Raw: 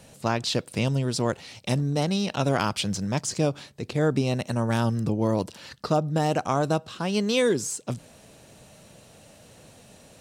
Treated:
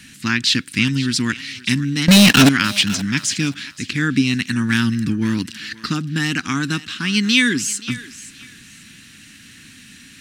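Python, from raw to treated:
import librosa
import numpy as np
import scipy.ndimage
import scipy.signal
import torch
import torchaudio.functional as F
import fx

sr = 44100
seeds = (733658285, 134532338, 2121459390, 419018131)

p1 = fx.curve_eq(x, sr, hz=(150.0, 270.0, 600.0, 1700.0, 8700.0), db=(0, 9, -28, 14, 5))
p2 = fx.leveller(p1, sr, passes=5, at=(2.08, 2.49))
p3 = p2 + fx.echo_thinned(p2, sr, ms=527, feedback_pct=24, hz=640.0, wet_db=-15.0, dry=0)
y = p3 * librosa.db_to_amplitude(2.5)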